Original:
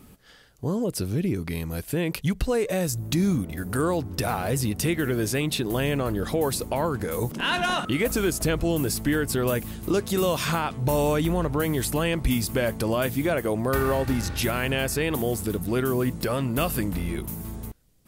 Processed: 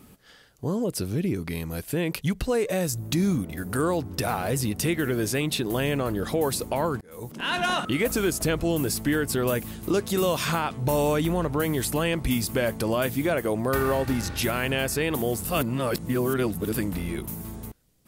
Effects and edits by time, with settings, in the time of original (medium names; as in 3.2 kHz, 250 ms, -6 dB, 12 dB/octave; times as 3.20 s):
7.01–7.65 s: fade in
15.45–16.74 s: reverse
whole clip: bass shelf 67 Hz -7.5 dB